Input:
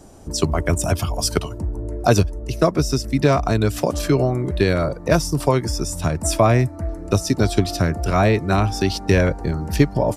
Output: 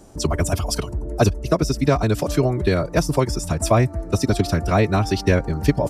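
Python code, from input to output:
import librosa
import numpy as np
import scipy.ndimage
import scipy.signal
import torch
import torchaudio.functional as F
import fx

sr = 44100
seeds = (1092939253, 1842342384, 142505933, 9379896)

y = fx.stretch_vocoder(x, sr, factor=0.58)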